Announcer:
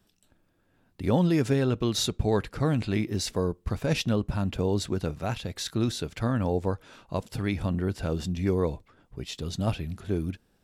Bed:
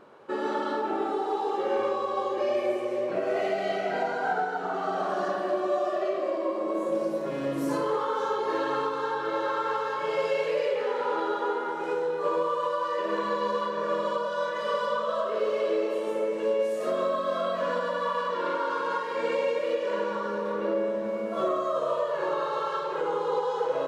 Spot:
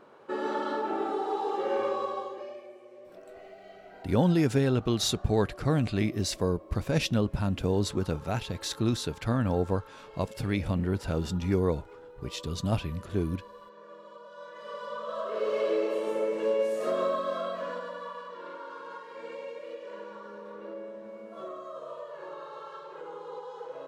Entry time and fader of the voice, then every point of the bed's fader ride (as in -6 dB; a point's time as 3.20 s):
3.05 s, -0.5 dB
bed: 2.05 s -2 dB
2.69 s -21 dB
14.07 s -21 dB
15.57 s -1 dB
17.08 s -1 dB
18.28 s -13.5 dB